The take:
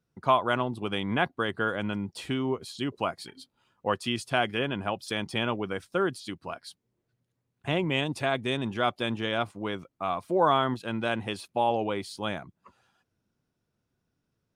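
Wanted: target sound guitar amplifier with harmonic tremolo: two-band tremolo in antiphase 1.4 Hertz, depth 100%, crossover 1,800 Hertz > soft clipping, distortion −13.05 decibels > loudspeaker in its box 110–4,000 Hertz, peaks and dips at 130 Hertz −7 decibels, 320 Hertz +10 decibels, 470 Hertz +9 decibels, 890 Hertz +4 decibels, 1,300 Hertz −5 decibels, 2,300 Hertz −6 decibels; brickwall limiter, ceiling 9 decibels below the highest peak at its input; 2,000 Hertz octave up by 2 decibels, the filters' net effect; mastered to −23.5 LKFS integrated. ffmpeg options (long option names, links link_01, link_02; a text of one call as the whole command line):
ffmpeg -i in.wav -filter_complex "[0:a]equalizer=frequency=2000:width_type=o:gain=6.5,alimiter=limit=-16dB:level=0:latency=1,acrossover=split=1800[link_01][link_02];[link_01]aeval=exprs='val(0)*(1-1/2+1/2*cos(2*PI*1.4*n/s))':channel_layout=same[link_03];[link_02]aeval=exprs='val(0)*(1-1/2-1/2*cos(2*PI*1.4*n/s))':channel_layout=same[link_04];[link_03][link_04]amix=inputs=2:normalize=0,asoftclip=threshold=-27dB,highpass=110,equalizer=frequency=130:width_type=q:width=4:gain=-7,equalizer=frequency=320:width_type=q:width=4:gain=10,equalizer=frequency=470:width_type=q:width=4:gain=9,equalizer=frequency=890:width_type=q:width=4:gain=4,equalizer=frequency=1300:width_type=q:width=4:gain=-5,equalizer=frequency=2300:width_type=q:width=4:gain=-6,lowpass=frequency=4000:width=0.5412,lowpass=frequency=4000:width=1.3066,volume=12dB" out.wav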